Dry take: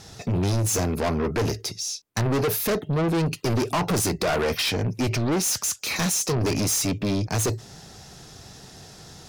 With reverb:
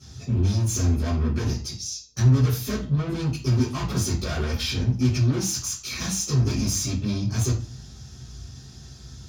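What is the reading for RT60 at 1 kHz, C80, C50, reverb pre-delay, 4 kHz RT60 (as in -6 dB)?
0.40 s, 13.5 dB, 7.5 dB, 3 ms, 0.35 s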